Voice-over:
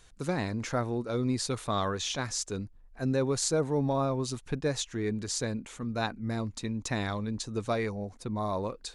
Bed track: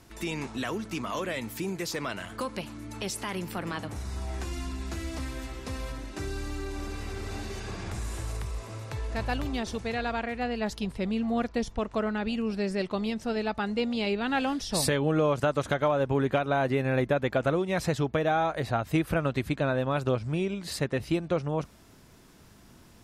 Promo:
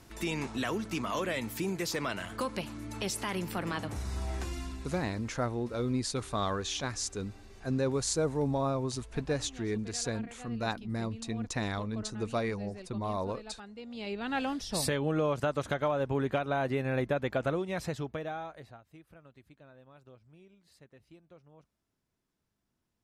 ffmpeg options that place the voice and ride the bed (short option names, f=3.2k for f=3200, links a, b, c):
-filter_complex "[0:a]adelay=4650,volume=-2dB[a];[1:a]volume=12.5dB,afade=t=out:st=4.29:d=0.87:silence=0.141254,afade=t=in:st=13.82:d=0.56:silence=0.223872,afade=t=out:st=17.46:d=1.36:silence=0.0630957[b];[a][b]amix=inputs=2:normalize=0"